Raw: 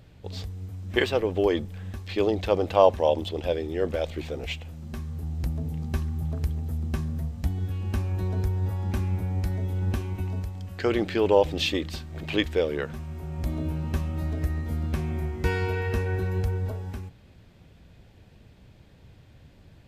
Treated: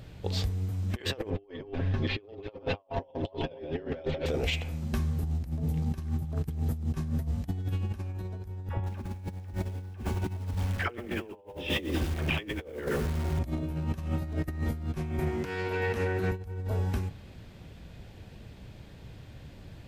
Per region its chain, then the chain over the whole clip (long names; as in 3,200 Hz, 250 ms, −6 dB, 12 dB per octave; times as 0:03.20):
0:01.30–0:04.26: delay that plays each chunk backwards 254 ms, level −6 dB + high-frequency loss of the air 210 metres + comb filter 7.4 ms, depth 97%
0:08.69–0:13.39: Savitzky-Golay smoothing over 25 samples + all-pass dispersion lows, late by 80 ms, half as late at 560 Hz + feedback echo at a low word length 99 ms, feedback 35%, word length 7 bits, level −6 dB
0:15.19–0:16.32: high-pass filter 130 Hz + highs frequency-modulated by the lows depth 0.2 ms
whole clip: hum removal 85.43 Hz, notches 30; compressor whose output falls as the input rises −32 dBFS, ratio −0.5